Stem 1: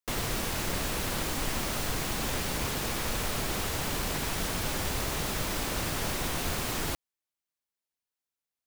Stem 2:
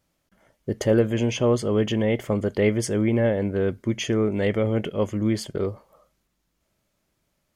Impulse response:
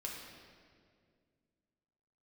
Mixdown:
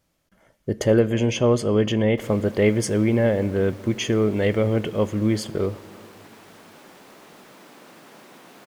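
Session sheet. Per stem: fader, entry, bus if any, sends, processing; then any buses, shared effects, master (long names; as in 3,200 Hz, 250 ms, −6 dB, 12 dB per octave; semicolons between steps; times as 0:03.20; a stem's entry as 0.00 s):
−11.5 dB, 2.10 s, no send, high-pass filter 190 Hz 24 dB per octave; high-shelf EQ 3,100 Hz −10 dB
+1.0 dB, 0.00 s, send −14 dB, no processing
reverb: on, RT60 2.1 s, pre-delay 6 ms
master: no processing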